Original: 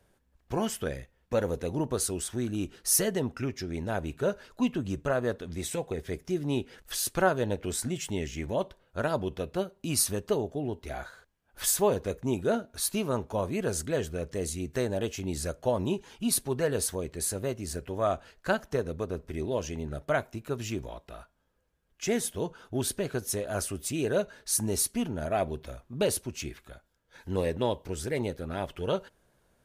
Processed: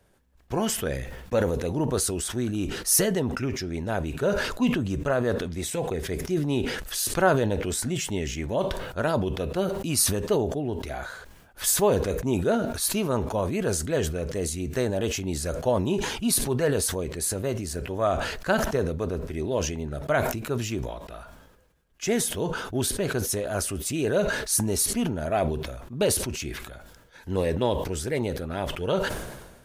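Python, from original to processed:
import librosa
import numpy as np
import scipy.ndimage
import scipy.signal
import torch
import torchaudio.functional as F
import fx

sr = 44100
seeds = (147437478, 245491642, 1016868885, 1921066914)

y = fx.sustainer(x, sr, db_per_s=47.0)
y = F.gain(torch.from_numpy(y), 3.0).numpy()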